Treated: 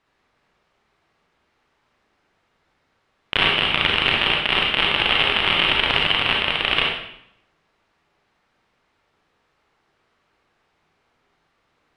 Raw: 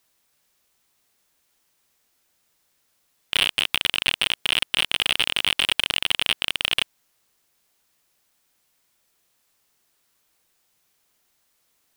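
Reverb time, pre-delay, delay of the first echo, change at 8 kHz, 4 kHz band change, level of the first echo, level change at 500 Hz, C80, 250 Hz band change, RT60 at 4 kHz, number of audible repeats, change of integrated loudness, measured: 0.75 s, 32 ms, no echo audible, below −15 dB, +2.5 dB, no echo audible, +11.0 dB, 5.0 dB, +10.5 dB, 0.65 s, no echo audible, +3.5 dB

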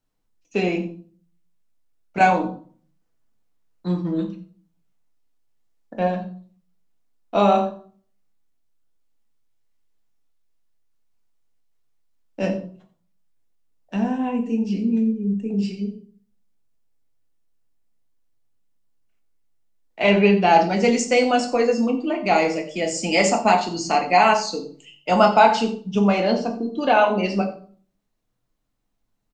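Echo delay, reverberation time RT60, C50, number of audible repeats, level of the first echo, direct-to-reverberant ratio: 89 ms, 0.50 s, 10.5 dB, 1, −16.5 dB, 3.5 dB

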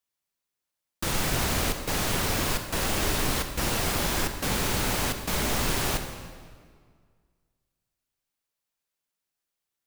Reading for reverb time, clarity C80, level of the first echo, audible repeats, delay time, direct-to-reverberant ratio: 1.9 s, 9.0 dB, no echo audible, no echo audible, no echo audible, 6.5 dB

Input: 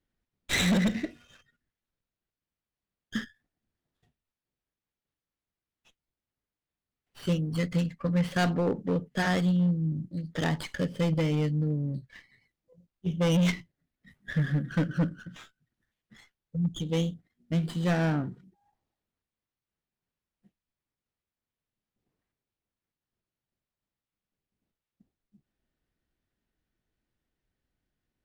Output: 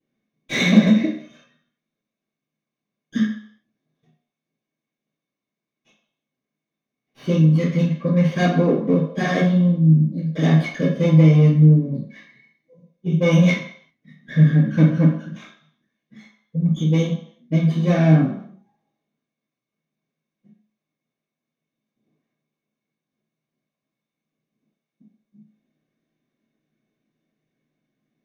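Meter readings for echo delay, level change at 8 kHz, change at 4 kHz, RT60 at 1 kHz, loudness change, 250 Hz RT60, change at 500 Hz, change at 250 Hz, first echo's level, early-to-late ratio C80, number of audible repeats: no echo audible, can't be measured, +4.0 dB, 0.65 s, +11.5 dB, 0.45 s, +9.5 dB, +11.0 dB, no echo audible, 9.0 dB, no echo audible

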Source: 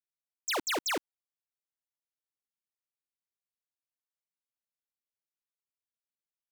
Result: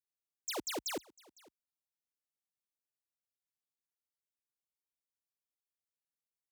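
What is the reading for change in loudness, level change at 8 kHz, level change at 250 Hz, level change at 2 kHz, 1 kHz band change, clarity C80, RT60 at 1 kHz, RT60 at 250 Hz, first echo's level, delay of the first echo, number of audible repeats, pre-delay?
−7.0 dB, −5.0 dB, −4.5 dB, −12.0 dB, −10.0 dB, no reverb audible, no reverb audible, no reverb audible, −24.0 dB, 506 ms, 1, no reverb audible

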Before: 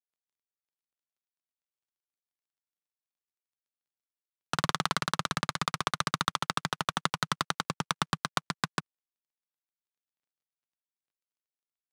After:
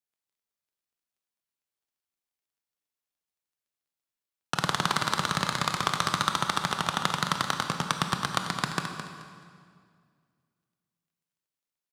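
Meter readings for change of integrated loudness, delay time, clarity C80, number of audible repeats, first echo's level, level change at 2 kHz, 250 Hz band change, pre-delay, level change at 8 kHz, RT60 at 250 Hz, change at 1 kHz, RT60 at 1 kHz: +3.5 dB, 215 ms, 5.0 dB, 2, −9.5 dB, +3.5 dB, +4.0 dB, 19 ms, +3.5 dB, 2.4 s, +3.5 dB, 2.0 s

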